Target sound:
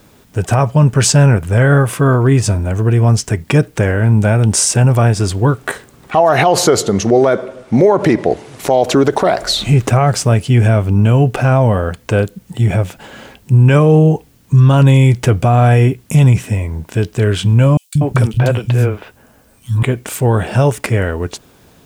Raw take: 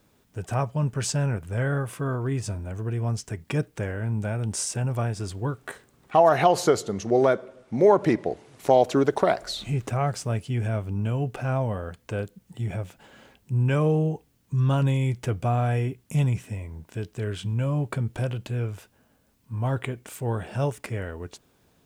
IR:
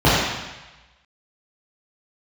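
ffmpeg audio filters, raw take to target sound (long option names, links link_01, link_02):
-filter_complex "[0:a]asettb=1/sr,asplit=3[link_01][link_02][link_03];[link_01]atrim=end=17.774[link_04];[link_02]atrim=start=17.77:end=19.83,asetpts=PTS-STARTPTS,afade=type=in:duration=0.004:curve=qsin,afade=type=out:start_time=2.056:duration=0.004:curve=qsin,acrossover=split=200|3600[link_05][link_06][link_07];[link_05]adelay=180[link_08];[link_06]adelay=240[link_09];[link_08][link_09][link_07]amix=inputs=3:normalize=0,atrim=end_sample=90846[link_10];[link_03]atrim=start=19.826[link_11];[link_04][link_10]acrossfade=duration=0.004:curve1=hsin:curve2=qsin[link_12];[link_12][link_11]acrossfade=duration=0.004:curve1=qsin:curve2=hsin,alimiter=level_in=17.5dB:limit=-1dB:release=50:level=0:latency=1,volume=-1dB"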